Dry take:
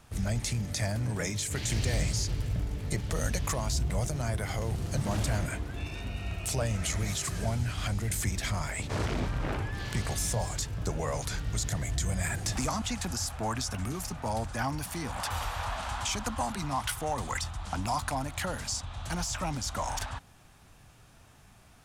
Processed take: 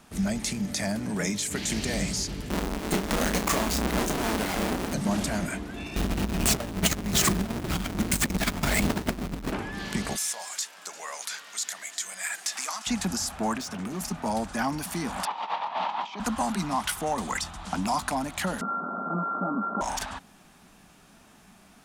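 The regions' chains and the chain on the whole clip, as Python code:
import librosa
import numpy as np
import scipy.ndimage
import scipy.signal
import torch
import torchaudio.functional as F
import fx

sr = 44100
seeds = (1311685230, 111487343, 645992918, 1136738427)

y = fx.chain(x, sr, fx.halfwave_hold(),
    fx.peak_eq(hz=120.0, db=-8.0, octaves=1.6),
    fx.doubler(ms=32.0, db=-8.5), at=(2.5, 4.94))
y = fx.chain(y, sr, fx.halfwave_hold(),
    fx.low_shelf(hz=110.0, db=8.5),
    fx.over_compress(threshold_db=-25.0, ratio=-0.5), at=(5.96, 9.52))
y = fx.chain(y, sr, fx.highpass(hz=1200.0, slope=12),
    fx.echo_single(ms=349, db=-18.5), at=(10.16, 12.87))
y = fx.chain(y, sr, fx.highpass(hz=88.0, slope=24),
    fx.high_shelf(hz=8200.0, db=-10.0),
    fx.clip_hard(threshold_db=-35.0), at=(13.57, 14.01))
y = fx.chain(y, sr, fx.over_compress(threshold_db=-36.0, ratio=-0.5),
    fx.cabinet(low_hz=200.0, low_slope=24, high_hz=4000.0, hz=(240.0, 910.0, 1500.0), db=(-7, 10, -8)), at=(15.25, 16.2))
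y = fx.chain(y, sr, fx.sample_sort(block=32),
    fx.brickwall_bandpass(low_hz=170.0, high_hz=1500.0),
    fx.env_flatten(amount_pct=70), at=(18.61, 19.81))
y = fx.low_shelf_res(y, sr, hz=150.0, db=-8.0, q=3.0)
y = fx.notch(y, sr, hz=510.0, q=14.0)
y = F.gain(torch.from_numpy(y), 3.5).numpy()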